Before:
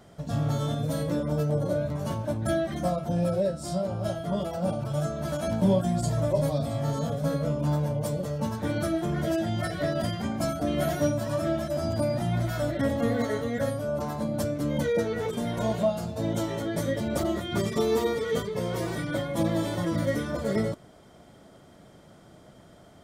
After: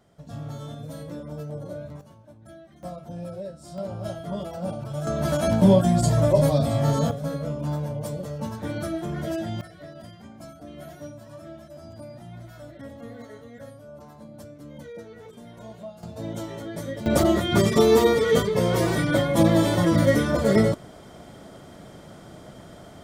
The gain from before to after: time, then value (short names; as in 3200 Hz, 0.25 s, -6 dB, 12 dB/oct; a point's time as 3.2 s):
-8.5 dB
from 2.01 s -20 dB
from 2.83 s -9.5 dB
from 3.78 s -2.5 dB
from 5.07 s +6.5 dB
from 7.11 s -2 dB
from 9.61 s -14.5 dB
from 16.03 s -4.5 dB
from 17.06 s +8 dB